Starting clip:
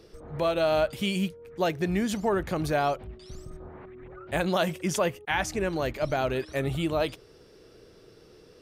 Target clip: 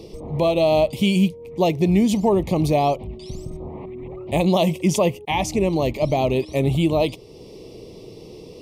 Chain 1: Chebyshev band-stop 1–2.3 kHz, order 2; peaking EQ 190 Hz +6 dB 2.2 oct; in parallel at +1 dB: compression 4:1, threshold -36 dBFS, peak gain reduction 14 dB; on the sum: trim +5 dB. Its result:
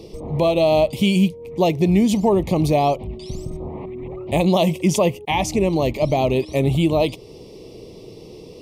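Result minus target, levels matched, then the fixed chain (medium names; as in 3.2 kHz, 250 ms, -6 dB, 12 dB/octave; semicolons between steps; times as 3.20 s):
compression: peak gain reduction -8 dB
Chebyshev band-stop 1–2.3 kHz, order 2; peaking EQ 190 Hz +6 dB 2.2 oct; in parallel at +1 dB: compression 4:1, threshold -47 dBFS, peak gain reduction 22.5 dB; on the sum: trim +5 dB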